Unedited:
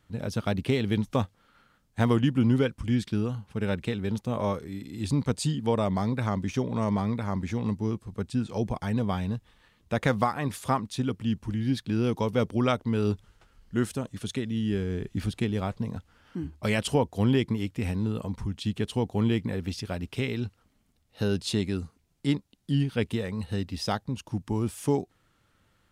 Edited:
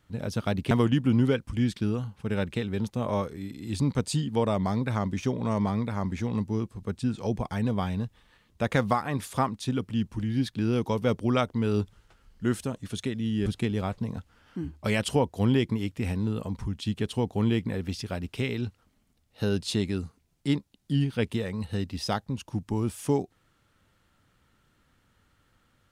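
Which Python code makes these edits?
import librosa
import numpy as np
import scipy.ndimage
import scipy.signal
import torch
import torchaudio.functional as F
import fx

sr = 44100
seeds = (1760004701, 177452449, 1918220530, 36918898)

y = fx.edit(x, sr, fx.cut(start_s=0.71, length_s=1.31),
    fx.cut(start_s=14.77, length_s=0.48), tone=tone)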